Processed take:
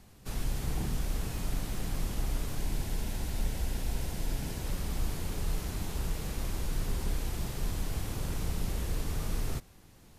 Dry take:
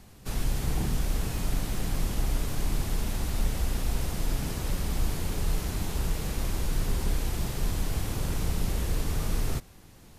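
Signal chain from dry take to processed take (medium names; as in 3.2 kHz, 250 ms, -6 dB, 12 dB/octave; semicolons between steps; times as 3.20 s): 2.57–4.66 s: band-stop 1.2 kHz, Q 6.6; trim -4.5 dB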